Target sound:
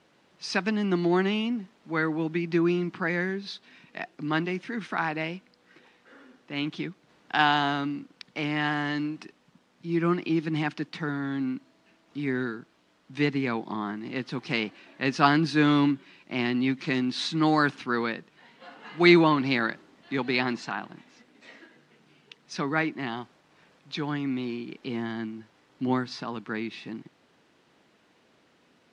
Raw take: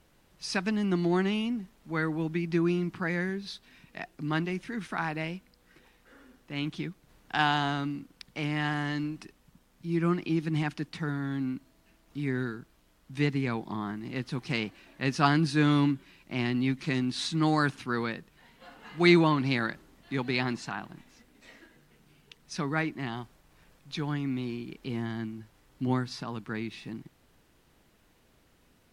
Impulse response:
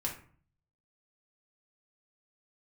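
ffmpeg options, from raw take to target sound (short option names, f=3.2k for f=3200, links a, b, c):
-af "highpass=200,lowpass=5.3k,volume=4dB"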